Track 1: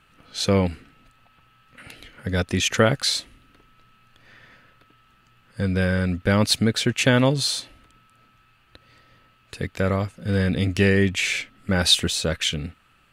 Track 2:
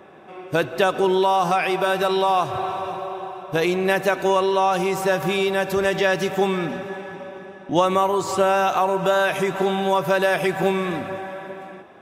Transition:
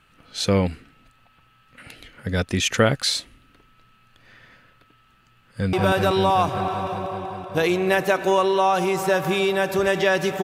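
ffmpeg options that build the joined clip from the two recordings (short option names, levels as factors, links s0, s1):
-filter_complex "[0:a]apad=whole_dur=10.43,atrim=end=10.43,atrim=end=5.732[s0];[1:a]atrim=start=1.708:end=6.41[s1];[s0][s1]acrossfade=d=0.004:c1=hsin:c2=hsin,asplit=2[s2][s3];[s3]afade=t=in:st=5.36:d=0.01,afade=t=out:st=5.73:d=0.01,aecho=0:1:190|380|570|760|950|1140|1330|1520|1710|1900|2090|2280:0.944061|0.755249|0.604199|0.483359|0.386687|0.30935|0.24748|0.197984|0.158387|0.12671|0.101368|0.0810942[s4];[s2][s4]amix=inputs=2:normalize=0"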